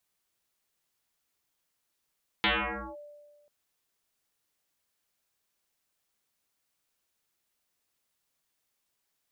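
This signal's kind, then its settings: FM tone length 1.04 s, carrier 588 Hz, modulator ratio 0.45, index 12, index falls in 0.52 s linear, decay 1.51 s, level -21 dB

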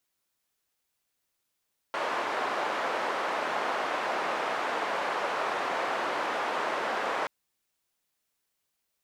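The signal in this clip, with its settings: noise band 520–1100 Hz, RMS -30.5 dBFS 5.33 s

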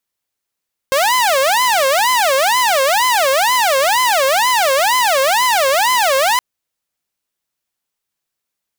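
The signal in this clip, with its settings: siren wail 530–1020 Hz 2.1 per s saw -9 dBFS 5.47 s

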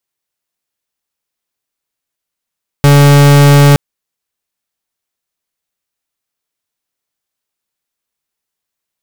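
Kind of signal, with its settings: pulse 143 Hz, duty 42% -4.5 dBFS 0.92 s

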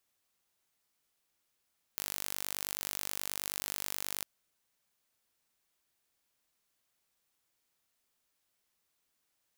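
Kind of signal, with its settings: pulse train 49.4 per s, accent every 0, -9.5 dBFS 2.25 s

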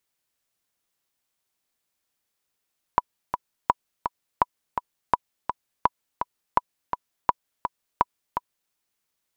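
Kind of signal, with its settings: metronome 167 bpm, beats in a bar 2, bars 8, 982 Hz, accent 7.5 dB -4 dBFS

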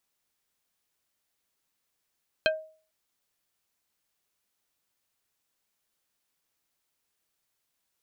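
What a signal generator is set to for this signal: wood hit plate, lowest mode 630 Hz, decay 0.42 s, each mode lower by 1 dB, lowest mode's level -19.5 dB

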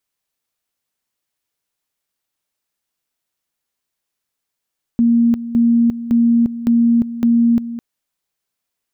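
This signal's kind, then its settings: two-level tone 234 Hz -9.5 dBFS, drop 13.5 dB, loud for 0.35 s, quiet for 0.21 s, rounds 5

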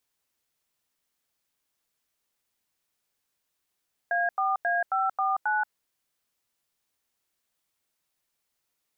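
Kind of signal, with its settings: DTMF "A4A549", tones 180 ms, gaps 89 ms, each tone -25.5 dBFS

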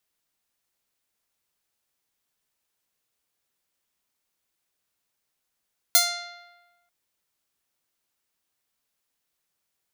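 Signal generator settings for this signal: plucked string F5, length 0.94 s, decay 1.23 s, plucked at 0.27, bright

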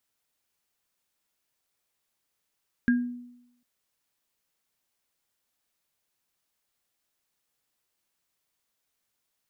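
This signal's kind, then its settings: sine partials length 0.75 s, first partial 244 Hz, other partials 1.62 kHz, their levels -6.5 dB, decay 0.83 s, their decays 0.25 s, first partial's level -17 dB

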